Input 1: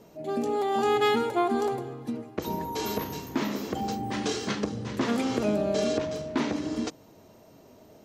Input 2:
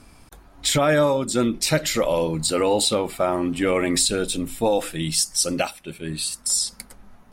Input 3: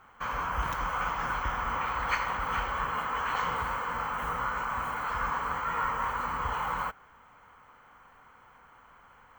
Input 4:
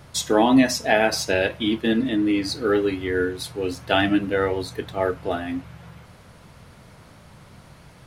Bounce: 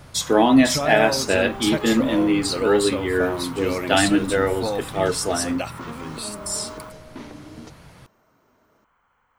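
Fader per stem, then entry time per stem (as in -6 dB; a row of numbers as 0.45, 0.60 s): -11.0, -6.0, -10.0, +1.5 dB; 0.80, 0.00, 0.00, 0.00 s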